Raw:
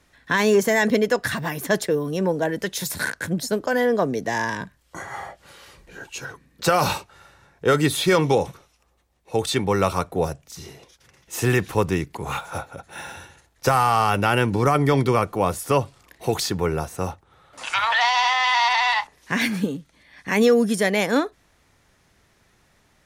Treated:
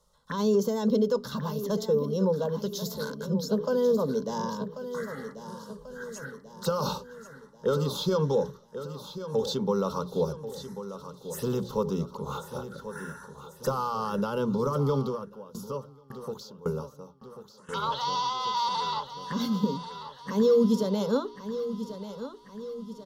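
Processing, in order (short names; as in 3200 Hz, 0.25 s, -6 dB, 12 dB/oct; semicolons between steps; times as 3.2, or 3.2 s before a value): high shelf 6000 Hz -6.5 dB; notches 60/120/180/240/300/360/420 Hz; limiter -13 dBFS, peak gain reduction 6.5 dB; fixed phaser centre 480 Hz, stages 8; envelope phaser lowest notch 280 Hz, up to 1800 Hz, full sweep at -30.5 dBFS; feedback echo 1.089 s, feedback 50%, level -11.5 dB; 14.99–17.69 dB-ramp tremolo decaying 1.8 Hz, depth 22 dB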